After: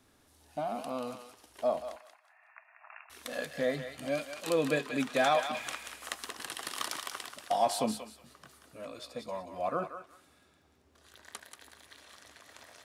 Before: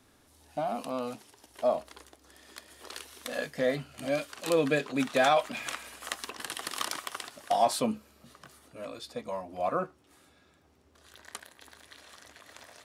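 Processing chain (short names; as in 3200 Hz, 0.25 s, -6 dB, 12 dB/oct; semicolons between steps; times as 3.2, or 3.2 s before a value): 1.96–3.1 brick-wall FIR band-pass 620–2800 Hz; on a send: thinning echo 0.184 s, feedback 25%, high-pass 1100 Hz, level -6 dB; on the sum: gain -3 dB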